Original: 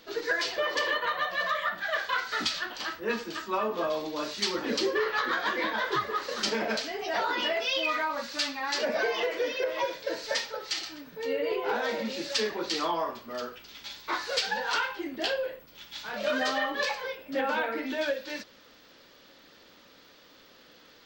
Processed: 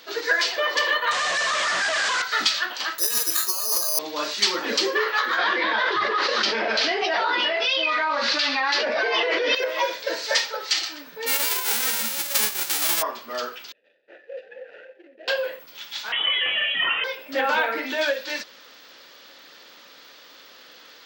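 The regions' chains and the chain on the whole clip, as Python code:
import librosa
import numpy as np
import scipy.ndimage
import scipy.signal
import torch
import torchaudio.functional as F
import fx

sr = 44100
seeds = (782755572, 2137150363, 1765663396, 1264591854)

y = fx.chain(x, sr, fx.clip_1bit(),
    fx.steep_lowpass(hz=7700.0, slope=36),
    fx.doppler_dist(depth_ms=0.13), at=(1.11, 2.22))
y = fx.chain(y, sr, fx.low_shelf(hz=230.0, db=-7.5),
    fx.over_compress(threshold_db=-36.0, ratio=-1.0),
    fx.resample_bad(factor=8, down='filtered', up='zero_stuff'), at=(2.98, 3.99))
y = fx.chain(y, sr, fx.lowpass(hz=5000.0, slope=24),
    fx.peak_eq(hz=350.0, db=4.5, octaves=0.3),
    fx.env_flatten(amount_pct=100), at=(5.38, 9.55))
y = fx.envelope_flatten(y, sr, power=0.1, at=(11.26, 13.01), fade=0.02)
y = fx.notch(y, sr, hz=970.0, q=16.0, at=(11.26, 13.01), fade=0.02)
y = fx.chain(y, sr, fx.median_filter(points=41),
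    fx.vowel_filter(vowel='e'),
    fx.air_absorb(metres=120.0), at=(13.72, 15.28))
y = fx.chain(y, sr, fx.freq_invert(carrier_hz=3600),
    fx.env_flatten(amount_pct=50), at=(16.12, 17.04))
y = fx.highpass(y, sr, hz=790.0, slope=6)
y = fx.rider(y, sr, range_db=3, speed_s=0.5)
y = y * librosa.db_to_amplitude(6.5)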